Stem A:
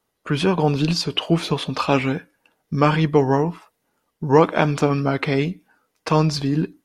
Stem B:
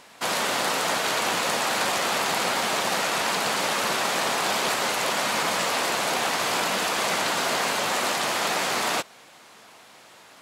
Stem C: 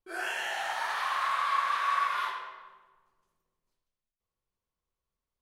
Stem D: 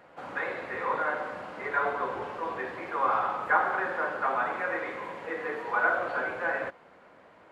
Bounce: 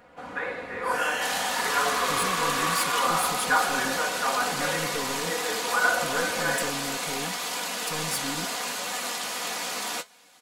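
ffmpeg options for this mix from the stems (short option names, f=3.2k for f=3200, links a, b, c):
-filter_complex "[0:a]aexciter=amount=6.5:drive=8.7:freq=8k,asoftclip=type=tanh:threshold=-19dB,adelay=1800,volume=-12.5dB[a];[1:a]flanger=delay=9.8:depth=8.5:regen=52:speed=0.76:shape=triangular,adelay=1000,volume=-6dB[b];[2:a]adelay=750,volume=0dB[c];[3:a]lowshelf=f=150:g=11,volume=-1.5dB[d];[a][b][c][d]amix=inputs=4:normalize=0,highshelf=f=3.6k:g=8.5,aecho=1:1:4.1:0.49"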